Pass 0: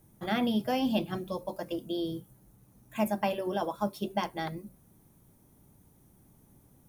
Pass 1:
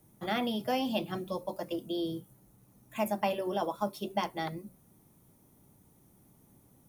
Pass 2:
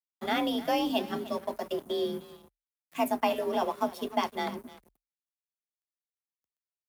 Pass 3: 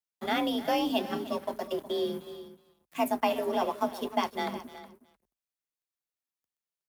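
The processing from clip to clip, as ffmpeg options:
-filter_complex "[0:a]lowshelf=f=69:g=-9.5,bandreject=f=1600:w=18,acrossover=split=390|1400|5500[s0][s1][s2][s3];[s0]alimiter=level_in=2.24:limit=0.0631:level=0:latency=1,volume=0.447[s4];[s4][s1][s2][s3]amix=inputs=4:normalize=0"
-af "aecho=1:1:304:0.178,aeval=exprs='sgn(val(0))*max(abs(val(0))-0.00299,0)':c=same,afreqshift=39,volume=1.5"
-af "aecho=1:1:367:0.178"

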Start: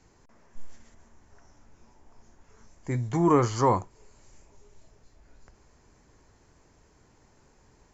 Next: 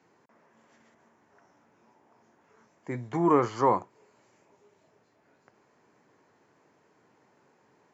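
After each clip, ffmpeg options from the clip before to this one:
-af "highpass=f=130:w=0.5412,highpass=f=130:w=1.3066,bass=f=250:g=-6,treble=f=4000:g=-13"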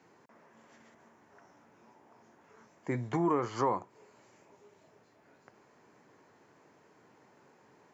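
-af "acompressor=threshold=0.0282:ratio=3,volume=1.33"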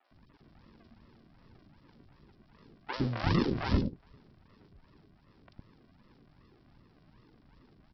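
-filter_complex "[0:a]aresample=11025,acrusher=samples=20:mix=1:aa=0.000001:lfo=1:lforange=12:lforate=2.6,aresample=44100,acrossover=split=510|3000[s0][s1][s2];[s2]adelay=40[s3];[s0]adelay=110[s4];[s4][s1][s3]amix=inputs=3:normalize=0,volume=1.33"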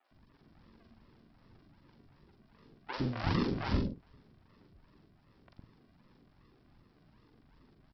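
-filter_complex "[0:a]asplit=2[s0][s1];[s1]adelay=45,volume=0.501[s2];[s0][s2]amix=inputs=2:normalize=0,volume=0.668"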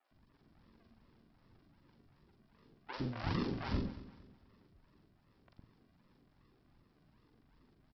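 -af "aecho=1:1:229|458|687:0.158|0.0571|0.0205,volume=0.562"

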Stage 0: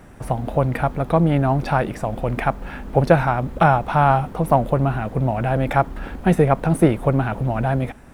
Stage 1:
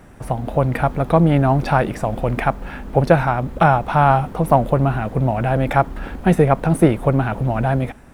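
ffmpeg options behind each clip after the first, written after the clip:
-af "dynaudnorm=f=250:g=5:m=1.88"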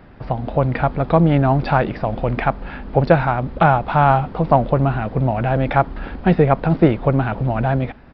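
-af "aresample=11025,aresample=44100"

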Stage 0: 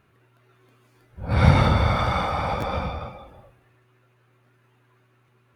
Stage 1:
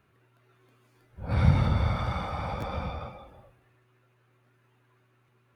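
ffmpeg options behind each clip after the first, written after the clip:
-filter_complex "[0:a]acrossover=split=230[s0][s1];[s1]acompressor=threshold=0.0355:ratio=3[s2];[s0][s2]amix=inputs=2:normalize=0,volume=0.596"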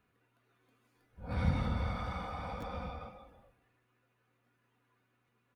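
-af "aecho=1:1:4.1:0.44,volume=0.398"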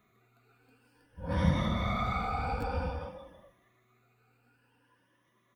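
-af "afftfilt=real='re*pow(10,13/40*sin(2*PI*(1.2*log(max(b,1)*sr/1024/100)/log(2)-(0.53)*(pts-256)/sr)))':imag='im*pow(10,13/40*sin(2*PI*(1.2*log(max(b,1)*sr/1024/100)/log(2)-(0.53)*(pts-256)/sr)))':win_size=1024:overlap=0.75,volume=1.68"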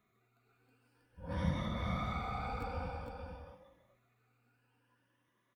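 -af "aecho=1:1:458:0.473,volume=0.422"

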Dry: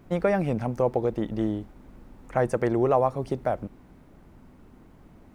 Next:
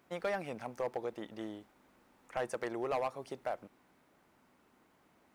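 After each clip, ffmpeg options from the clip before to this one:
-af "highpass=f=1100:p=1,volume=15,asoftclip=hard,volume=0.0668,volume=0.596"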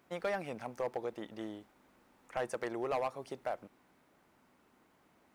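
-af anull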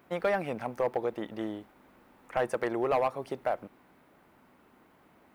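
-af "equalizer=f=6500:t=o:w=1.5:g=-8.5,volume=2.37"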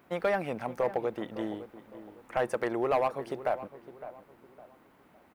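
-filter_complex "[0:a]asplit=2[s0][s1];[s1]adelay=559,lowpass=f=1800:p=1,volume=0.211,asplit=2[s2][s3];[s3]adelay=559,lowpass=f=1800:p=1,volume=0.36,asplit=2[s4][s5];[s5]adelay=559,lowpass=f=1800:p=1,volume=0.36[s6];[s0][s2][s4][s6]amix=inputs=4:normalize=0"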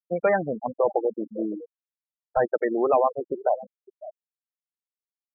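-af "afftfilt=real='re*gte(hypot(re,im),0.0631)':imag='im*gte(hypot(re,im),0.0631)':win_size=1024:overlap=0.75,volume=2.24"

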